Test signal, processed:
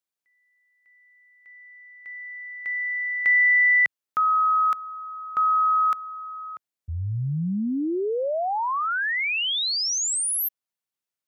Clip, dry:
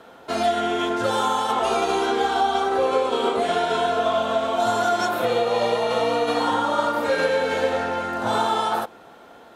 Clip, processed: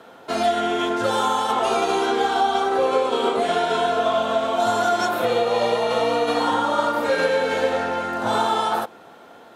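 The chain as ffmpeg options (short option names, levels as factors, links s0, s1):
-af "highpass=89,volume=1.12"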